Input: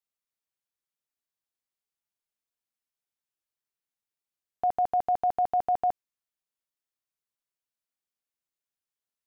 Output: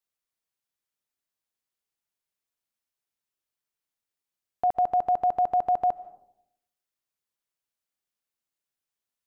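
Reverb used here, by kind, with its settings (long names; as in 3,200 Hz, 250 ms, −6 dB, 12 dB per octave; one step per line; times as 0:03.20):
comb and all-pass reverb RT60 0.77 s, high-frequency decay 0.3×, pre-delay 105 ms, DRR 19 dB
level +2 dB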